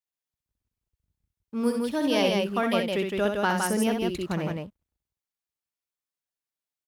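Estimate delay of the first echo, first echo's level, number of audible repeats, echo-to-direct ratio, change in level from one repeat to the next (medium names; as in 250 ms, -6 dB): 64 ms, -5.5 dB, 2, -1.5 dB, no regular repeats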